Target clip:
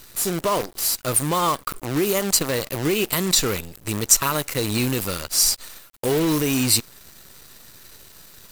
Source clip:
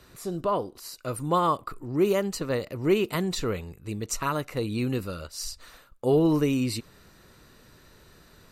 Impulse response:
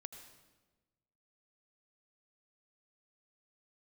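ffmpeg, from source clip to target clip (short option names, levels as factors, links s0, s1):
-af "alimiter=limit=0.106:level=0:latency=1:release=145,crystalizer=i=4:c=0,acrusher=bits=6:dc=4:mix=0:aa=0.000001,volume=1.88"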